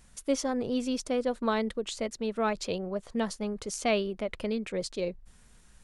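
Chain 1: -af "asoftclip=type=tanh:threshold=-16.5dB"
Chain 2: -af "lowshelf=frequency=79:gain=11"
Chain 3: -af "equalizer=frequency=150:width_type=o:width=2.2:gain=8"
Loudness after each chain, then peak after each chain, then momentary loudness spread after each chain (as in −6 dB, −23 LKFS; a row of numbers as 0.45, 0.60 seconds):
−32.0, −31.0, −28.0 LKFS; −18.5, −14.5, −12.5 dBFS; 5, 5, 5 LU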